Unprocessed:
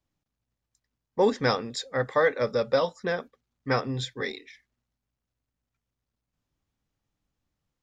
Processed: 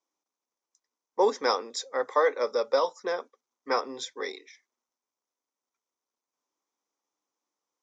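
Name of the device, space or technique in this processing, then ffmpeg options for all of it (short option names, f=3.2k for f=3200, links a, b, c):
phone speaker on a table: -af "highpass=f=340:w=0.5412,highpass=f=340:w=1.3066,equalizer=f=640:t=q:w=4:g=-3,equalizer=f=1k:t=q:w=4:g=6,equalizer=f=1.7k:t=q:w=4:g=-7,equalizer=f=2.8k:t=q:w=4:g=-8,equalizer=f=4.2k:t=q:w=4:g=-5,equalizer=f=6k:t=q:w=4:g=8,lowpass=f=7.6k:w=0.5412,lowpass=f=7.6k:w=1.3066"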